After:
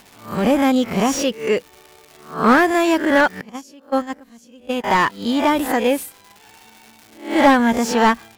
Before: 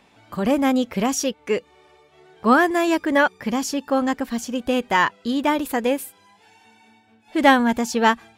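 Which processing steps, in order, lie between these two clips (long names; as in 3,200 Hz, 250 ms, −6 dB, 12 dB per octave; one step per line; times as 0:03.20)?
peak hold with a rise ahead of every peak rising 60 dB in 0.40 s
surface crackle 370 per second −36 dBFS
in parallel at −5 dB: gain into a clipping stage and back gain 13 dB
0:03.41–0:04.84: on the sum: noise gate −14 dBFS, range −23 dB
slew-rate limiting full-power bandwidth 410 Hz
level −1 dB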